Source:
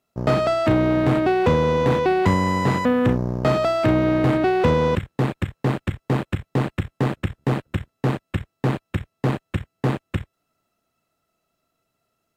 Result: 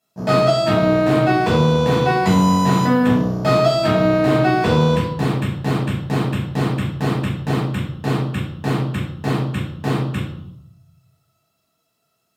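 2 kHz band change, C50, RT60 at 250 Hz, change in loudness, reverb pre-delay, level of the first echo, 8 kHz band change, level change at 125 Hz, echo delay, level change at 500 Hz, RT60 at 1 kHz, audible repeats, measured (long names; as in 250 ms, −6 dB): +3.5 dB, 4.5 dB, 0.95 s, +3.5 dB, 5 ms, no echo audible, can't be measured, +4.0 dB, no echo audible, +2.5 dB, 0.75 s, no echo audible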